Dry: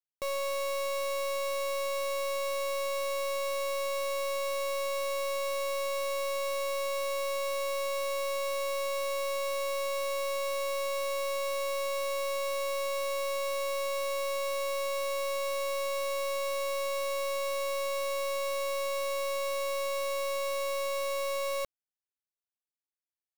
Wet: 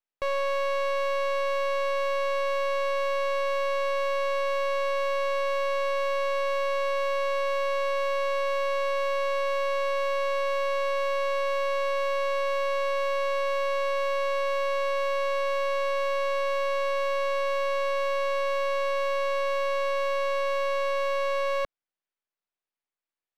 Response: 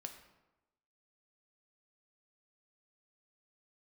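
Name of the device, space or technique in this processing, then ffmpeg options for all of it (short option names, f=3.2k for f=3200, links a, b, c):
crystal radio: -af "highpass=280,lowpass=3k,aeval=exprs='if(lt(val(0),0),0.251*val(0),val(0))':c=same,volume=9dB"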